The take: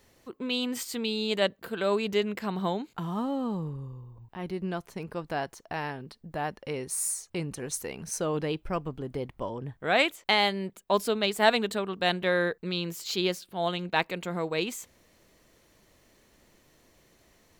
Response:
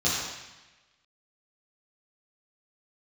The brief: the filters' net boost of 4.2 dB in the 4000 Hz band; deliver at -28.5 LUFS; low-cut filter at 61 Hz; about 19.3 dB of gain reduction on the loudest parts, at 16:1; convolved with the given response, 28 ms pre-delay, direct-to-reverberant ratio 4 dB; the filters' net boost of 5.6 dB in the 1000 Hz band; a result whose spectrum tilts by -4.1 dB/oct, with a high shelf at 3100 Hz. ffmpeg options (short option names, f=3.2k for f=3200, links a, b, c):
-filter_complex "[0:a]highpass=61,equalizer=f=1k:t=o:g=7.5,highshelf=f=3.1k:g=-6,equalizer=f=4k:t=o:g=9,acompressor=threshold=-31dB:ratio=16,asplit=2[a][b];[1:a]atrim=start_sample=2205,adelay=28[c];[b][c]afir=irnorm=-1:irlink=0,volume=-16.5dB[d];[a][d]amix=inputs=2:normalize=0,volume=6dB"